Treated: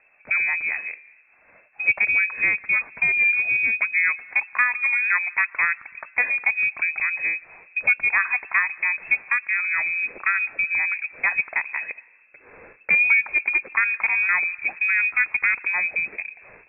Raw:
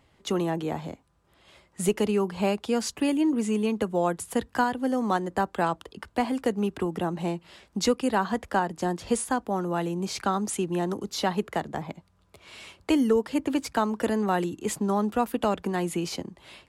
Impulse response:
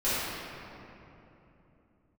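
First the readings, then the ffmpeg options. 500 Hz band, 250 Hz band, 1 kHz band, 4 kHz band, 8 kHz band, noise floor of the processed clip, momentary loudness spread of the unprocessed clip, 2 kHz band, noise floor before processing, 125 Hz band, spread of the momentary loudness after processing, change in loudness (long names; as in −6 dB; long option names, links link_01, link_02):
−20.0 dB, below −25 dB, −4.5 dB, below −40 dB, below −40 dB, −56 dBFS, 9 LU, +19.5 dB, −65 dBFS, below −20 dB, 8 LU, +7.0 dB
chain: -filter_complex "[0:a]asplit=2[link_01][link_02];[1:a]atrim=start_sample=2205,afade=type=out:start_time=0.41:duration=0.01,atrim=end_sample=18522,adelay=111[link_03];[link_02][link_03]afir=irnorm=-1:irlink=0,volume=-35.5dB[link_04];[link_01][link_04]amix=inputs=2:normalize=0,lowpass=frequency=2300:width_type=q:width=0.5098,lowpass=frequency=2300:width_type=q:width=0.6013,lowpass=frequency=2300:width_type=q:width=0.9,lowpass=frequency=2300:width_type=q:width=2.563,afreqshift=-2700,volume=4dB"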